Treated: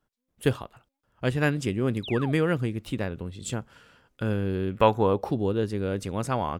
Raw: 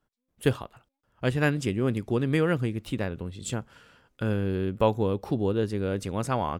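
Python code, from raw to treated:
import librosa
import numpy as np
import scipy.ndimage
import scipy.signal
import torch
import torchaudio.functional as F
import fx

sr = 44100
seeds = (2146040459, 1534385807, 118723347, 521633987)

y = fx.spec_paint(x, sr, seeds[0], shape='fall', start_s=2.03, length_s=0.29, low_hz=580.0, high_hz=4100.0, level_db=-38.0)
y = fx.peak_eq(y, sr, hz=fx.line((4.7, 2400.0), (5.27, 610.0)), db=10.5, octaves=1.8, at=(4.7, 5.27), fade=0.02)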